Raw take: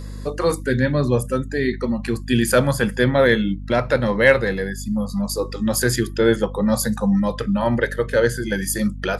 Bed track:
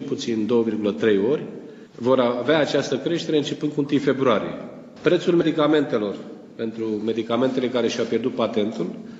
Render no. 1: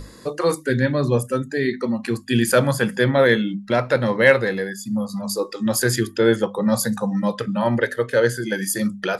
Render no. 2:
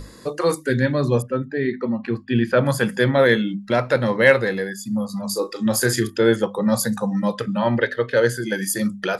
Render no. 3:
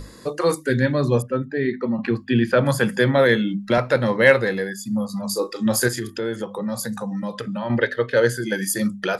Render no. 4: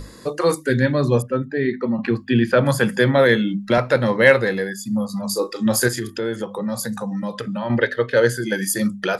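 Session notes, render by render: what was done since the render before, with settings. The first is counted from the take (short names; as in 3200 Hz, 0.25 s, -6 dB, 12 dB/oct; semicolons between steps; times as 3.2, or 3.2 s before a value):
notches 50/100/150/200/250 Hz
1.22–2.66 air absorption 320 m; 5.3–6.1 doubler 37 ms -10.5 dB; 7.58–8.17 resonant high shelf 5900 Hz -14 dB, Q 1.5
1.98–3.78 three-band squash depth 40%; 5.88–7.7 compressor 2.5:1, threshold -26 dBFS
gain +1.5 dB; limiter -1 dBFS, peak gain reduction 1 dB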